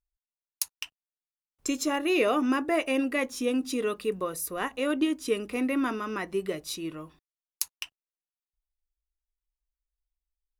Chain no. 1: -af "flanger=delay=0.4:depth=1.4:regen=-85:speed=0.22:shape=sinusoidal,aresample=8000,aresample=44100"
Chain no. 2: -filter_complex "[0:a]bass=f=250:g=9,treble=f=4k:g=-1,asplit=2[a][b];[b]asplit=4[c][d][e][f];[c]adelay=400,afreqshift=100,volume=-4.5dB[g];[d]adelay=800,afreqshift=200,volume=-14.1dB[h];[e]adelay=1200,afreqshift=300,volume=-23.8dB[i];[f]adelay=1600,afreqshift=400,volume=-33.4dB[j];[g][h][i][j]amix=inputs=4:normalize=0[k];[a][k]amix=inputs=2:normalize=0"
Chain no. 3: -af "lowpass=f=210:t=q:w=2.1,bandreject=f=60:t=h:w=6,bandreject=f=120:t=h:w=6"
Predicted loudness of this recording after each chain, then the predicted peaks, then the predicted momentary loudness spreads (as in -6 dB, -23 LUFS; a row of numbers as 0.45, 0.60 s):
-33.5, -26.0, -31.5 LUFS; -17.0, -9.5, -16.5 dBFS; 17, 17, 14 LU